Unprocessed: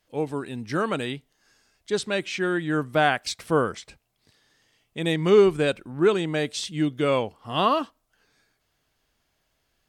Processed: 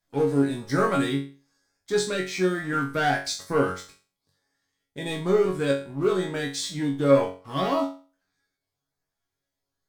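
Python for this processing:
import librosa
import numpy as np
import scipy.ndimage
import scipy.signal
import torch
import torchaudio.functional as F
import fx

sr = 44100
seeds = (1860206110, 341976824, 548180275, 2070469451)

y = fx.peak_eq(x, sr, hz=2800.0, db=-12.5, octaves=0.31)
y = fx.leveller(y, sr, passes=2)
y = fx.rider(y, sr, range_db=10, speed_s=2.0)
y = fx.filter_lfo_notch(y, sr, shape='saw_up', hz=1.1, low_hz=390.0, high_hz=4200.0, q=2.7)
y = fx.resonator_bank(y, sr, root=42, chord='fifth', decay_s=0.36)
y = y * librosa.db_to_amplitude(6.5)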